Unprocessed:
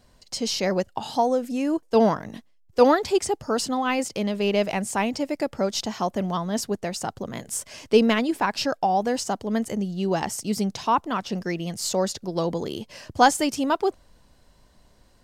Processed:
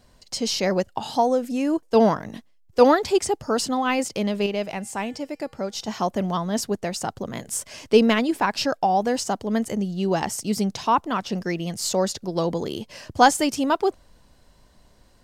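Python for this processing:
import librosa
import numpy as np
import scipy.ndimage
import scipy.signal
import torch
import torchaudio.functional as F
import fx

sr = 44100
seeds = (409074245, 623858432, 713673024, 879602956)

y = fx.comb_fb(x, sr, f0_hz=160.0, decay_s=0.81, harmonics='odd', damping=0.0, mix_pct=50, at=(4.46, 5.88))
y = y * librosa.db_to_amplitude(1.5)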